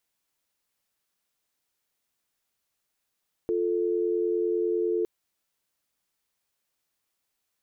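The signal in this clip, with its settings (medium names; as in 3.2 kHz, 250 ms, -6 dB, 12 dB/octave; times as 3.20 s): call progress tone dial tone, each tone -26 dBFS 1.56 s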